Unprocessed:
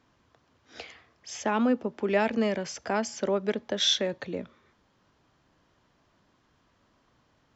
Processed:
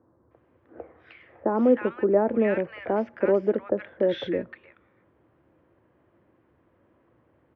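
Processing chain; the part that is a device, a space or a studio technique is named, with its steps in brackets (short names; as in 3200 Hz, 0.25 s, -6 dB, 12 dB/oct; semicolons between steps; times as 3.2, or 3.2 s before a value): bass cabinet (speaker cabinet 68–2200 Hz, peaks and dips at 73 Hz +6 dB, 110 Hz +4 dB, 340 Hz +10 dB, 520 Hz +8 dB); bands offset in time lows, highs 0.31 s, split 1300 Hz; gain +1 dB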